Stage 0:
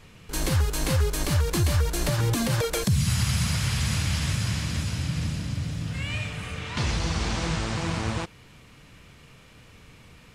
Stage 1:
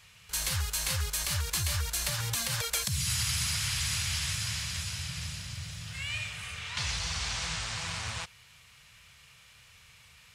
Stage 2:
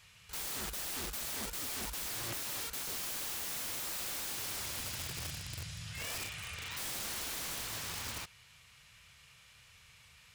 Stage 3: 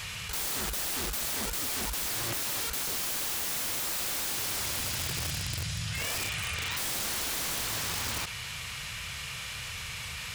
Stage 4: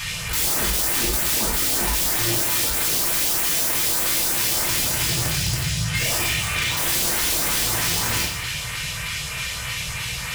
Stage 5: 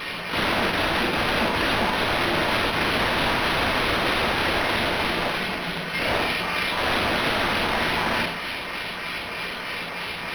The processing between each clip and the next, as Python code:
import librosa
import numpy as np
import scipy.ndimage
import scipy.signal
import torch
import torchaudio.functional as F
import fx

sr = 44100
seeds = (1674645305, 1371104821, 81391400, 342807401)

y1 = scipy.signal.sosfilt(scipy.signal.butter(2, 70.0, 'highpass', fs=sr, output='sos'), x)
y1 = fx.tone_stack(y1, sr, knobs='10-0-10')
y1 = F.gain(torch.from_numpy(y1), 2.0).numpy()
y2 = (np.mod(10.0 ** (31.0 / 20.0) * y1 + 1.0, 2.0) - 1.0) / 10.0 ** (31.0 / 20.0)
y2 = F.gain(torch.from_numpy(y2), -3.5).numpy()
y3 = fx.env_flatten(y2, sr, amount_pct=70)
y3 = F.gain(torch.from_numpy(y3), 6.0).numpy()
y4 = fx.filter_lfo_notch(y3, sr, shape='saw_up', hz=3.2, low_hz=450.0, high_hz=6800.0, q=1.0)
y4 = fx.rev_double_slope(y4, sr, seeds[0], early_s=0.55, late_s=1.6, knee_db=-18, drr_db=-2.5)
y4 = F.gain(torch.from_numpy(y4), 7.5).numpy()
y5 = scipy.signal.sosfilt(scipy.signal.cheby1(6, 6, 170.0, 'highpass', fs=sr, output='sos'), y4)
y5 = np.interp(np.arange(len(y5)), np.arange(len(y5))[::6], y5[::6])
y5 = F.gain(torch.from_numpy(y5), 6.0).numpy()